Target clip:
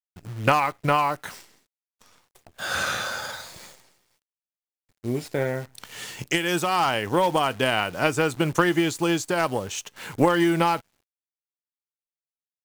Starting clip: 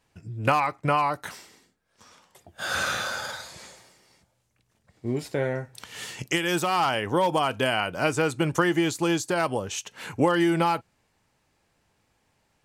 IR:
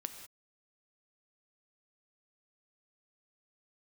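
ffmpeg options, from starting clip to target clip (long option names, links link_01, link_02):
-af "agate=range=-33dB:threshold=-54dB:ratio=3:detection=peak,acrusher=bits=8:dc=4:mix=0:aa=0.000001,aeval=exprs='0.596*(cos(1*acos(clip(val(0)/0.596,-1,1)))-cos(1*PI/2))+0.0266*(cos(7*acos(clip(val(0)/0.596,-1,1)))-cos(7*PI/2))':channel_layout=same,volume=3.5dB"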